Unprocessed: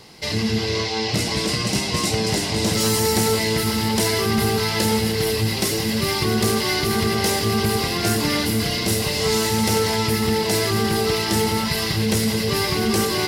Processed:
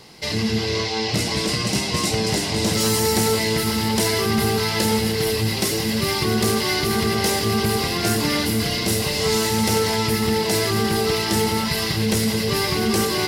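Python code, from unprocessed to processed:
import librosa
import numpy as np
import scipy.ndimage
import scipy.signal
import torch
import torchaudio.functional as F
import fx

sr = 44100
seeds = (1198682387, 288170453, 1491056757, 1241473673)

y = fx.hum_notches(x, sr, base_hz=50, count=2)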